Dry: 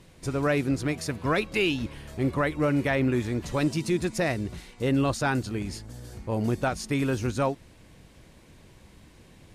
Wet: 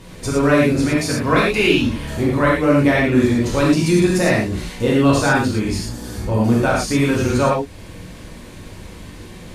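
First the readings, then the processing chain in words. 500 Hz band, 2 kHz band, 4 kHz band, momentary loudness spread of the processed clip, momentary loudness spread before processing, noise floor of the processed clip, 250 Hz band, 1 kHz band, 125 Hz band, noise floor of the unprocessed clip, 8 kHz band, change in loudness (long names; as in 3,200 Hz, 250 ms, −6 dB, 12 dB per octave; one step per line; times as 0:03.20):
+10.5 dB, +10.5 dB, +10.5 dB, 9 LU, 9 LU, −38 dBFS, +11.0 dB, +10.5 dB, +9.5 dB, −54 dBFS, +11.5 dB, +10.5 dB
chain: in parallel at +2.5 dB: downward compressor, threshold −38 dBFS, peak gain reduction 16.5 dB
on the sum: reverb whose tail is shaped and stops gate 140 ms flat, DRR −5 dB
level +2.5 dB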